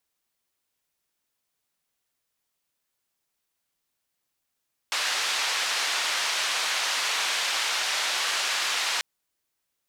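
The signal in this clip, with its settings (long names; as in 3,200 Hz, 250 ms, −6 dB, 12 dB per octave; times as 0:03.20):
band-limited noise 860–4,700 Hz, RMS −27 dBFS 4.09 s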